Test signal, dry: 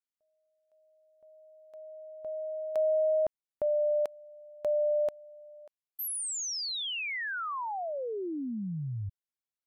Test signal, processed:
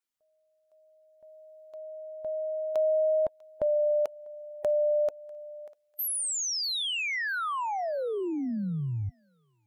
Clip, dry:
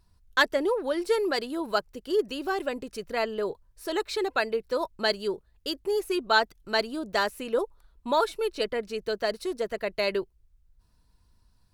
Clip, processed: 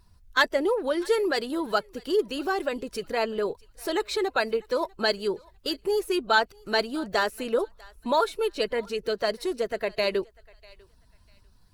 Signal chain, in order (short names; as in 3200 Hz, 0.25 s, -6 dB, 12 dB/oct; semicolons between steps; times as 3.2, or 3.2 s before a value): bin magnitudes rounded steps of 15 dB; in parallel at -1.5 dB: compressor, threshold -36 dBFS; on the sum: thinning echo 0.646 s, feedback 28%, high-pass 830 Hz, level -23 dB